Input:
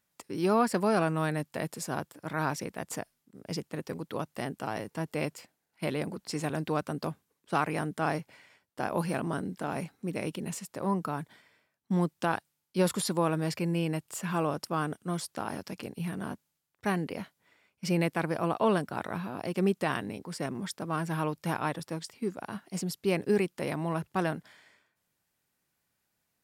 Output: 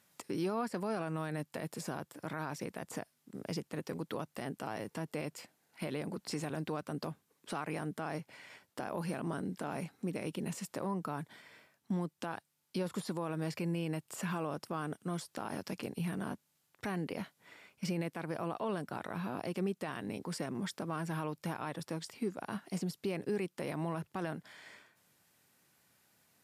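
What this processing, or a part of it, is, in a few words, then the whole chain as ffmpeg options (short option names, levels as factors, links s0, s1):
podcast mastering chain: -af "highpass=93,deesser=0.9,acompressor=threshold=0.00224:ratio=2,alimiter=level_in=3.76:limit=0.0631:level=0:latency=1:release=42,volume=0.266,volume=3.16" -ar 32000 -c:a libmp3lame -b:a 112k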